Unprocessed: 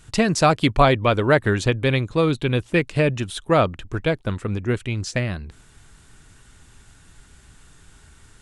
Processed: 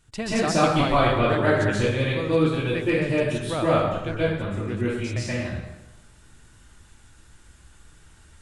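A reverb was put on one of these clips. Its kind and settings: plate-style reverb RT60 1 s, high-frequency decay 0.75×, pre-delay 115 ms, DRR -9 dB; trim -12 dB

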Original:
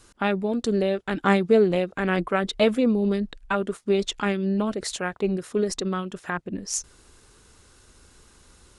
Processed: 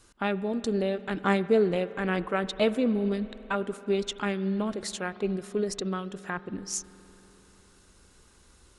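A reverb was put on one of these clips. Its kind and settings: spring tank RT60 3.8 s, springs 47 ms, chirp 50 ms, DRR 15 dB; trim -4.5 dB

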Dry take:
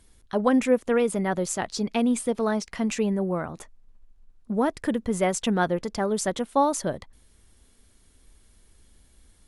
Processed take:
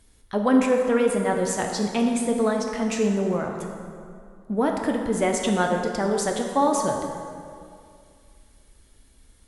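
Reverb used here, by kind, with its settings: plate-style reverb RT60 2.3 s, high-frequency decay 0.6×, DRR 1.5 dB

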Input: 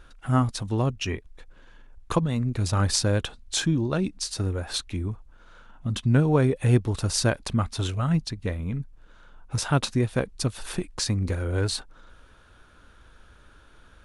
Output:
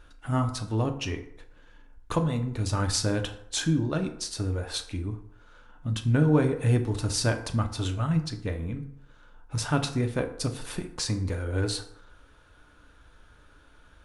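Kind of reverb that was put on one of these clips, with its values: FDN reverb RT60 0.73 s, low-frequency decay 0.8×, high-frequency decay 0.55×, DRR 5 dB; trim -3.5 dB

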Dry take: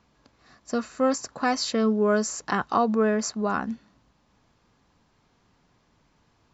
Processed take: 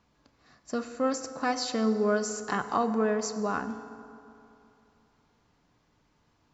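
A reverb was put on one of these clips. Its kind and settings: FDN reverb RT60 2.8 s, high-frequency decay 0.55×, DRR 9.5 dB; trim -4.5 dB

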